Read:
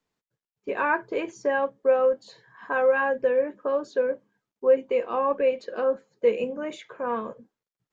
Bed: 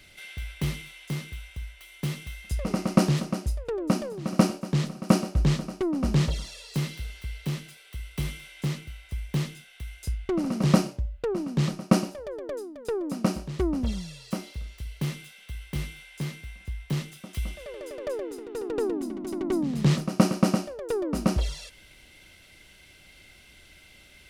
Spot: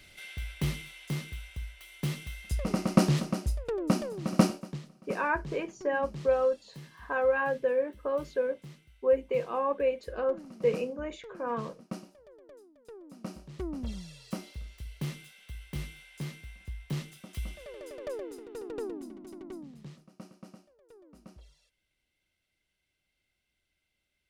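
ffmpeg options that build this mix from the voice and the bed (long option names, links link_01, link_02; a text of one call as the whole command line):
ffmpeg -i stem1.wav -i stem2.wav -filter_complex "[0:a]adelay=4400,volume=-5dB[link_01];[1:a]volume=11.5dB,afade=type=out:start_time=4.44:duration=0.36:silence=0.141254,afade=type=in:start_time=13.1:duration=1.18:silence=0.211349,afade=type=out:start_time=18.21:duration=1.71:silence=0.0749894[link_02];[link_01][link_02]amix=inputs=2:normalize=0" out.wav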